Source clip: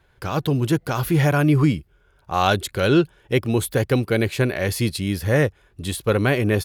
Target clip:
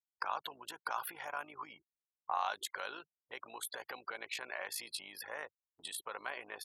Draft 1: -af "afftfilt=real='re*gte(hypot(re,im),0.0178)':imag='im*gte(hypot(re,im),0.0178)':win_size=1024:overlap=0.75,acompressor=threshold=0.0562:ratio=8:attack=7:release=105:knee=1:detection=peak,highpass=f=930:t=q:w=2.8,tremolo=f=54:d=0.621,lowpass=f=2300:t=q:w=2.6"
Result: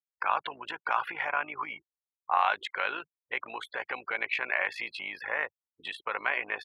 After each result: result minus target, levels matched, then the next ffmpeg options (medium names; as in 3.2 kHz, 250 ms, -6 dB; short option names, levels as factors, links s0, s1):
compression: peak gain reduction -8.5 dB; 2 kHz band +3.0 dB
-af "afftfilt=real='re*gte(hypot(re,im),0.0178)':imag='im*gte(hypot(re,im),0.0178)':win_size=1024:overlap=0.75,acompressor=threshold=0.0188:ratio=8:attack=7:release=105:knee=1:detection=peak,highpass=f=930:t=q:w=2.8,tremolo=f=54:d=0.621,lowpass=f=2300:t=q:w=2.6"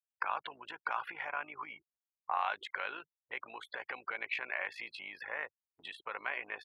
2 kHz band +3.0 dB
-af "afftfilt=real='re*gte(hypot(re,im),0.0178)':imag='im*gte(hypot(re,im),0.0178)':win_size=1024:overlap=0.75,acompressor=threshold=0.0188:ratio=8:attack=7:release=105:knee=1:detection=peak,highpass=f=930:t=q:w=2.8,tremolo=f=54:d=0.621"